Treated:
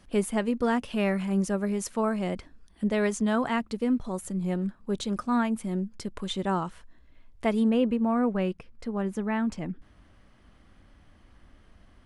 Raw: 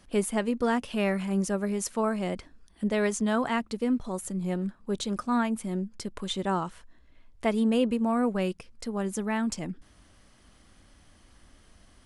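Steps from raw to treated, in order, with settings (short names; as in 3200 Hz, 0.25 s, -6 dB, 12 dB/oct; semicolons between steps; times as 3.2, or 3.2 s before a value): tone controls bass +2 dB, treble -3 dB, from 7.68 s treble -14 dB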